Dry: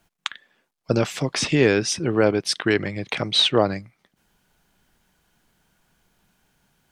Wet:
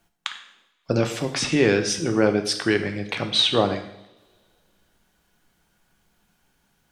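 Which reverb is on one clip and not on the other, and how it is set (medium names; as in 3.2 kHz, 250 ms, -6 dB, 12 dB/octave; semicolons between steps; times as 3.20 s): two-slope reverb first 0.73 s, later 2.5 s, from -26 dB, DRR 5.5 dB; trim -2 dB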